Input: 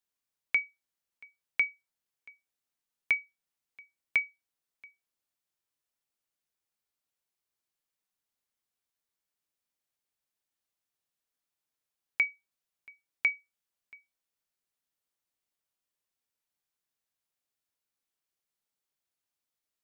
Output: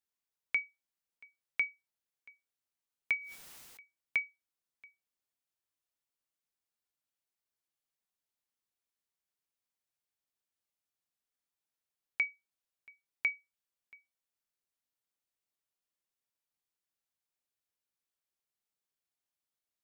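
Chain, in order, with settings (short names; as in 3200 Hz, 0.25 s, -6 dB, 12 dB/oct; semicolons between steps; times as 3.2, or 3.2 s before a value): 3.17–3.8 sustainer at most 20 dB/s; gain -4.5 dB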